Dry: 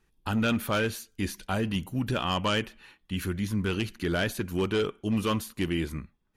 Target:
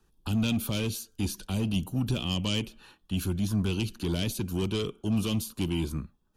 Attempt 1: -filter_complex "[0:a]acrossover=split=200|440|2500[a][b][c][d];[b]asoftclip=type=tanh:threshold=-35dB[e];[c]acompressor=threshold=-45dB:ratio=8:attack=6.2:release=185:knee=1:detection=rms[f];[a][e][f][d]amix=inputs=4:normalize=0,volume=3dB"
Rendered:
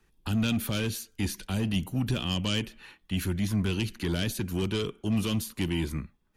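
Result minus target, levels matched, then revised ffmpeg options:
2000 Hz band +3.5 dB
-filter_complex "[0:a]acrossover=split=200|440|2500[a][b][c][d];[b]asoftclip=type=tanh:threshold=-35dB[e];[c]acompressor=threshold=-45dB:ratio=8:attack=6.2:release=185:knee=1:detection=rms,lowpass=f=1.9k:w=0.5412,lowpass=f=1.9k:w=1.3066[f];[a][e][f][d]amix=inputs=4:normalize=0,volume=3dB"

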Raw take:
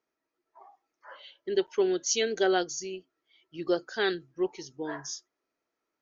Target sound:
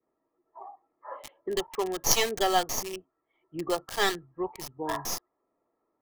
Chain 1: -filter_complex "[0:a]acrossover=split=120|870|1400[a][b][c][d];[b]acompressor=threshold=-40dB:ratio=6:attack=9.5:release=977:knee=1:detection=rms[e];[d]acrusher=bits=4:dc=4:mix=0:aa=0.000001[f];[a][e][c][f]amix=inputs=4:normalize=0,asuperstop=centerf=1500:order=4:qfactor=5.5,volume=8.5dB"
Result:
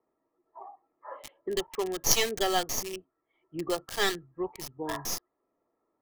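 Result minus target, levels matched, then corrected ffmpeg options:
1000 Hz band -3.0 dB
-filter_complex "[0:a]acrossover=split=120|870|1400[a][b][c][d];[b]acompressor=threshold=-40dB:ratio=6:attack=9.5:release=977:knee=1:detection=rms[e];[d]acrusher=bits=4:dc=4:mix=0:aa=0.000001[f];[a][e][c][f]amix=inputs=4:normalize=0,asuperstop=centerf=1500:order=4:qfactor=5.5,adynamicequalizer=threshold=0.00251:dfrequency=880:dqfactor=1.2:tfrequency=880:tqfactor=1.2:attack=5:release=100:ratio=0.4:range=2.5:mode=boostabove:tftype=bell,volume=8.5dB"

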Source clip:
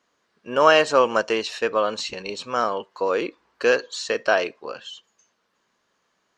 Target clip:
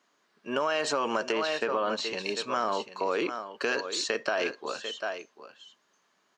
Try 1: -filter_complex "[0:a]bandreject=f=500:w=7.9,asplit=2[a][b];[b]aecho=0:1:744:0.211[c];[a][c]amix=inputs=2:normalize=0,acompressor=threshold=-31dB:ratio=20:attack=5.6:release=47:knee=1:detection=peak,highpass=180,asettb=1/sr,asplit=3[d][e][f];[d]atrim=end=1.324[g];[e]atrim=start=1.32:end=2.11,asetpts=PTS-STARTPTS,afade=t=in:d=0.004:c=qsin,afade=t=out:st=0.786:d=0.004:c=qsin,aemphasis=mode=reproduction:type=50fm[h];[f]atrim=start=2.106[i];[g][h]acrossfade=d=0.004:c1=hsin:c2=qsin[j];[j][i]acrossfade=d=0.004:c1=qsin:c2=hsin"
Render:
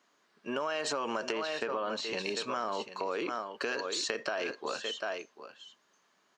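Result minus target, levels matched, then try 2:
compressor: peak gain reduction +5.5 dB
-filter_complex "[0:a]bandreject=f=500:w=7.9,asplit=2[a][b];[b]aecho=0:1:744:0.211[c];[a][c]amix=inputs=2:normalize=0,acompressor=threshold=-25dB:ratio=20:attack=5.6:release=47:knee=1:detection=peak,highpass=180,asettb=1/sr,asplit=3[d][e][f];[d]atrim=end=1.324[g];[e]atrim=start=1.32:end=2.11,asetpts=PTS-STARTPTS,afade=t=in:d=0.004:c=qsin,afade=t=out:st=0.786:d=0.004:c=qsin,aemphasis=mode=reproduction:type=50fm[h];[f]atrim=start=2.106[i];[g][h]acrossfade=d=0.004:c1=hsin:c2=qsin[j];[j][i]acrossfade=d=0.004:c1=qsin:c2=hsin"

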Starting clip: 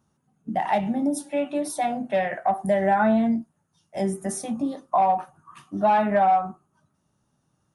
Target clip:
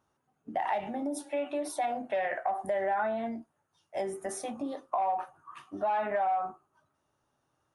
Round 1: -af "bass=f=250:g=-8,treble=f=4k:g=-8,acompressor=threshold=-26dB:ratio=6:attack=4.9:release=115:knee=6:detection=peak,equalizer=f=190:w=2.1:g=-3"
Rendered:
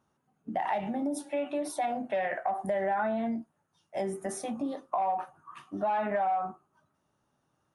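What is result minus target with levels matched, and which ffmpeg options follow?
250 Hz band +3.5 dB
-af "bass=f=250:g=-8,treble=f=4k:g=-8,acompressor=threshold=-26dB:ratio=6:attack=4.9:release=115:knee=6:detection=peak,equalizer=f=190:w=2.1:g=-12"

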